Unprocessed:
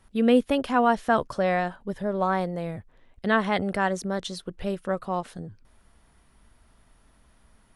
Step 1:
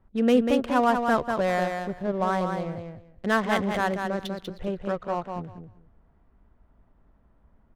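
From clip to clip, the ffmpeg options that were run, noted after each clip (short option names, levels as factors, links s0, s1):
-filter_complex "[0:a]adynamicsmooth=sensitivity=5.5:basefreq=1100,asplit=2[s0][s1];[s1]aecho=0:1:193|386|579:0.531|0.0903|0.0153[s2];[s0][s2]amix=inputs=2:normalize=0,volume=0.891"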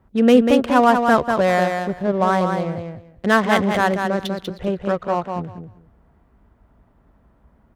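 -af "highpass=46,volume=2.37"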